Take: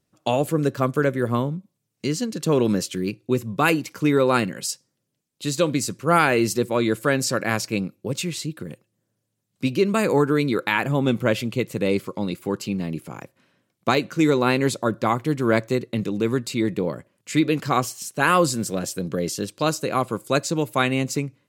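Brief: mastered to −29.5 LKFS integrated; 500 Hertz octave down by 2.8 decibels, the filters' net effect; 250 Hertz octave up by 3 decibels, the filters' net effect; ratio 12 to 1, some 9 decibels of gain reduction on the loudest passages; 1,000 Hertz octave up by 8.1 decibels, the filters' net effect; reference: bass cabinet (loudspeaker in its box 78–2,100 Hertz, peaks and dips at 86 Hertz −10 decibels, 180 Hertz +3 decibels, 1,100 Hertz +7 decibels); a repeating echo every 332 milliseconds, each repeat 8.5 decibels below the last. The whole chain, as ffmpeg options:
ffmpeg -i in.wav -af "equalizer=frequency=250:width_type=o:gain=5,equalizer=frequency=500:width_type=o:gain=-7,equalizer=frequency=1000:width_type=o:gain=6.5,acompressor=threshold=-21dB:ratio=12,highpass=frequency=78:width=0.5412,highpass=frequency=78:width=1.3066,equalizer=frequency=86:width_type=q:width=4:gain=-10,equalizer=frequency=180:width_type=q:width=4:gain=3,equalizer=frequency=1100:width_type=q:width=4:gain=7,lowpass=frequency=2100:width=0.5412,lowpass=frequency=2100:width=1.3066,aecho=1:1:332|664|996|1328:0.376|0.143|0.0543|0.0206,volume=-3.5dB" out.wav

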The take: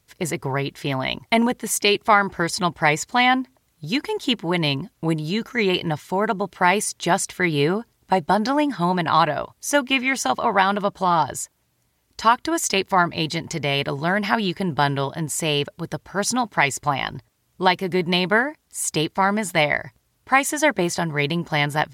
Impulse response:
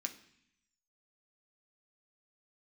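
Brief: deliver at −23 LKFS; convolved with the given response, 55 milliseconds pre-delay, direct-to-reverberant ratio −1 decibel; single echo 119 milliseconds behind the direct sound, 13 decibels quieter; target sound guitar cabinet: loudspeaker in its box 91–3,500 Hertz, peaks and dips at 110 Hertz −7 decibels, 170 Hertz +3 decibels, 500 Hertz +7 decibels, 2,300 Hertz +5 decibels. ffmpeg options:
-filter_complex "[0:a]aecho=1:1:119:0.224,asplit=2[link_01][link_02];[1:a]atrim=start_sample=2205,adelay=55[link_03];[link_02][link_03]afir=irnorm=-1:irlink=0,volume=2dB[link_04];[link_01][link_04]amix=inputs=2:normalize=0,highpass=91,equalizer=frequency=110:width_type=q:width=4:gain=-7,equalizer=frequency=170:width_type=q:width=4:gain=3,equalizer=frequency=500:width_type=q:width=4:gain=7,equalizer=frequency=2300:width_type=q:width=4:gain=5,lowpass=frequency=3500:width=0.5412,lowpass=frequency=3500:width=1.3066,volume=-6dB"

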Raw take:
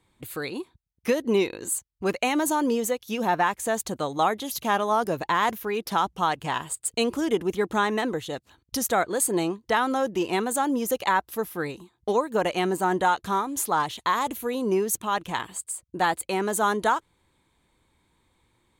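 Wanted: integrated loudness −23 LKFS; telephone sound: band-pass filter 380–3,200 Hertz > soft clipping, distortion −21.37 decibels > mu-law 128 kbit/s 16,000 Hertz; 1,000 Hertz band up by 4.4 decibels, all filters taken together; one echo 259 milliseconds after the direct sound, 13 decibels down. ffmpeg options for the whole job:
ffmpeg -i in.wav -af "highpass=380,lowpass=3200,equalizer=frequency=1000:width_type=o:gain=5.5,aecho=1:1:259:0.224,asoftclip=threshold=-9.5dB,volume=2dB" -ar 16000 -c:a pcm_mulaw out.wav

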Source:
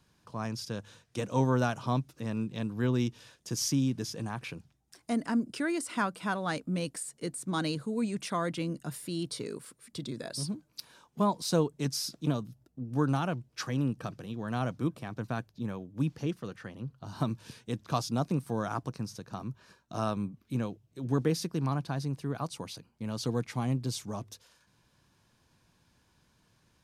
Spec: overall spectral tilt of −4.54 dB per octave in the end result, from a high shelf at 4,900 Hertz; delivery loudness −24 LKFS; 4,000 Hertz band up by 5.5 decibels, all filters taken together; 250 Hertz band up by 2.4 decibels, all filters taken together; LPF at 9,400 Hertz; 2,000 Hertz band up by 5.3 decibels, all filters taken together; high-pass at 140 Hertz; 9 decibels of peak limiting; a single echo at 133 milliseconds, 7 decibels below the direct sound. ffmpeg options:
ffmpeg -i in.wav -af "highpass=140,lowpass=9400,equalizer=frequency=250:width_type=o:gain=3.5,equalizer=frequency=2000:width_type=o:gain=6,equalizer=frequency=4000:width_type=o:gain=4,highshelf=frequency=4900:gain=3.5,alimiter=limit=-21dB:level=0:latency=1,aecho=1:1:133:0.447,volume=9dB" out.wav

